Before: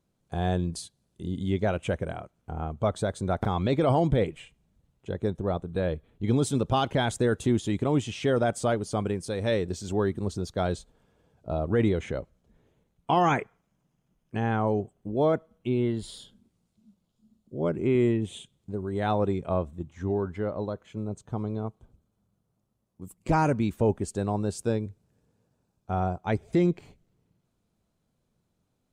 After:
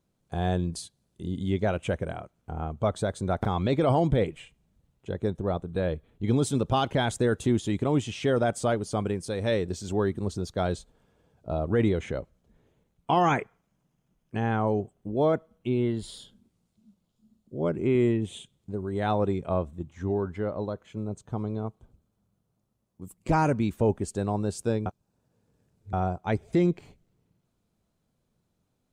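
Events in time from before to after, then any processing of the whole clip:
24.86–25.93 reverse

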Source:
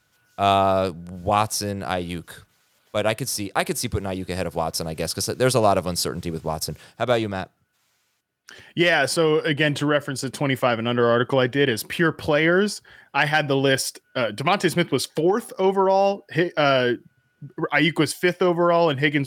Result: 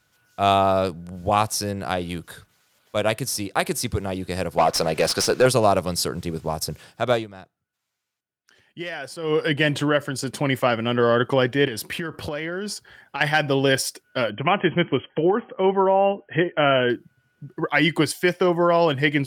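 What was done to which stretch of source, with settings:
4.58–5.46 overdrive pedal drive 20 dB, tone 2900 Hz, clips at -7 dBFS
7.13–9.36 dip -13.5 dB, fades 0.14 s
11.67–13.21 compressor 10:1, threshold -24 dBFS
14.3–16.9 brick-wall FIR low-pass 3300 Hz

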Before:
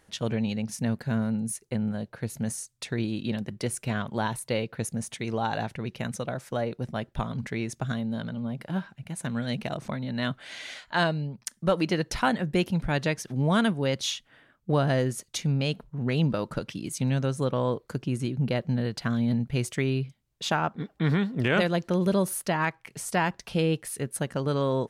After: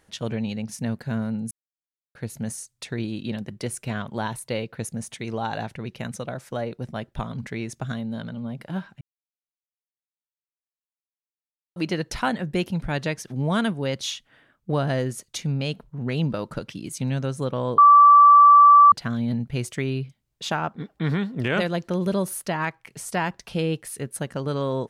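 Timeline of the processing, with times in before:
1.51–2.15 mute
9.01–11.76 mute
17.78–18.92 bleep 1160 Hz -8 dBFS

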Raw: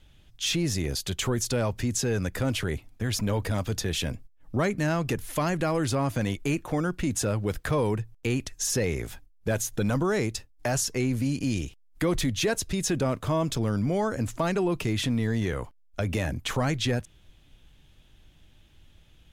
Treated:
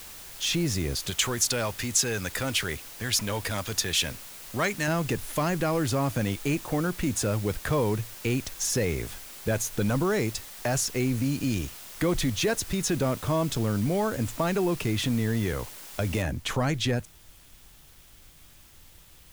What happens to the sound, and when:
1.1–4.88 tilt shelf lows -6.5 dB, about 800 Hz
16.22 noise floor step -44 dB -56 dB

